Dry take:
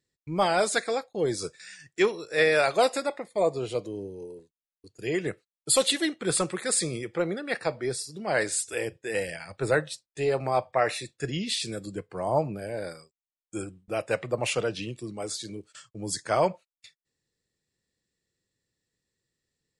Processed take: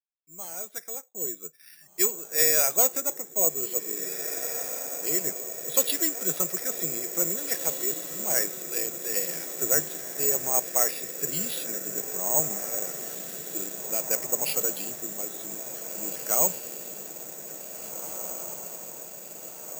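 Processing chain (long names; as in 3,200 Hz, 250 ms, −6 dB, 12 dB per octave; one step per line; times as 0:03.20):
fade in at the beginning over 2.57 s
Chebyshev band-pass filter 150–6,700 Hz, order 4
feedback delay with all-pass diffusion 1,934 ms, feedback 67%, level −9 dB
bad sample-rate conversion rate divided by 6×, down filtered, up zero stuff
level −6.5 dB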